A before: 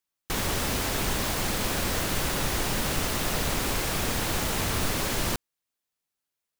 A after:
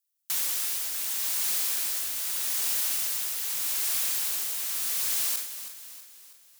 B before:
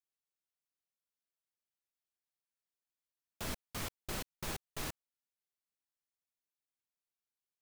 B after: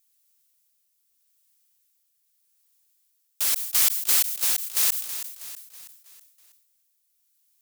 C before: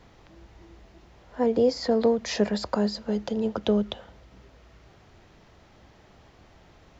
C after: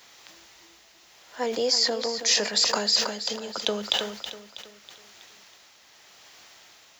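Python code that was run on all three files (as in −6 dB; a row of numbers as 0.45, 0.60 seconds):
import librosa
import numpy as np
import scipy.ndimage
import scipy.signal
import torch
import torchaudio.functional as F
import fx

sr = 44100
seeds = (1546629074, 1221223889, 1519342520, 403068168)

p1 = np.diff(x, prepend=0.0)
p2 = 10.0 ** (-28.5 / 20.0) * np.tanh(p1 / 10.0 ** (-28.5 / 20.0))
p3 = p1 + F.gain(torch.from_numpy(p2), -10.5).numpy()
p4 = fx.tremolo_shape(p3, sr, shape='triangle', hz=0.82, depth_pct=50)
p5 = fx.echo_feedback(p4, sr, ms=323, feedback_pct=49, wet_db=-11.5)
p6 = fx.sustainer(p5, sr, db_per_s=81.0)
y = p6 * 10.0 ** (-30 / 20.0) / np.sqrt(np.mean(np.square(p6)))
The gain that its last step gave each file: +2.5, +22.5, +17.0 decibels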